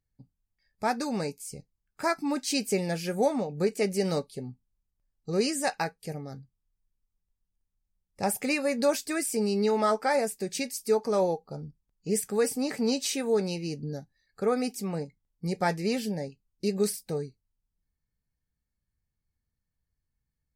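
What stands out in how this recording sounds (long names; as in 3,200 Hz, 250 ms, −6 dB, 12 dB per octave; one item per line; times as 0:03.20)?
background noise floor −84 dBFS
spectral slope −4.5 dB per octave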